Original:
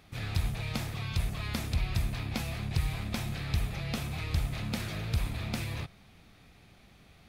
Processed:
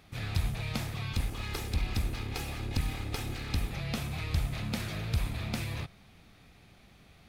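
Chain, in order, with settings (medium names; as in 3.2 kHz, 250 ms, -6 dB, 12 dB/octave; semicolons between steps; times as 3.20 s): 1.13–3.71 s: comb filter that takes the minimum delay 2.4 ms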